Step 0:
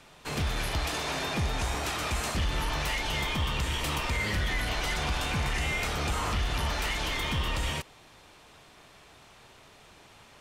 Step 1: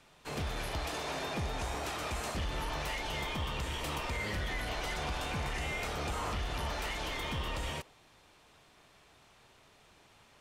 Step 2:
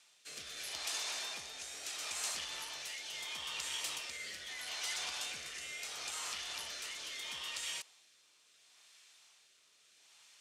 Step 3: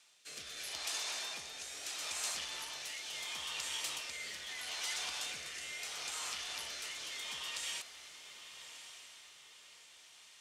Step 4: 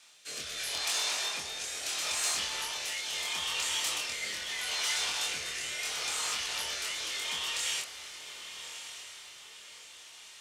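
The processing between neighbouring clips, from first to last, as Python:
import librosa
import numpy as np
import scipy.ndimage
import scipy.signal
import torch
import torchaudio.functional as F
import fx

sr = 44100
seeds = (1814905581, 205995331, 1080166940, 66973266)

y1 = fx.dynamic_eq(x, sr, hz=560.0, q=0.72, threshold_db=-45.0, ratio=4.0, max_db=5)
y1 = y1 * librosa.db_to_amplitude(-7.5)
y2 = fx.bandpass_q(y1, sr, hz=7000.0, q=0.92)
y2 = fx.rotary(y2, sr, hz=0.75)
y2 = y2 * librosa.db_to_amplitude(8.5)
y3 = fx.echo_diffused(y2, sr, ms=1164, feedback_pct=47, wet_db=-10.5)
y4 = 10.0 ** (-27.0 / 20.0) * np.tanh(y3 / 10.0 ** (-27.0 / 20.0))
y4 = fx.doubler(y4, sr, ms=25.0, db=-2.0)
y4 = y4 * librosa.db_to_amplitude(6.0)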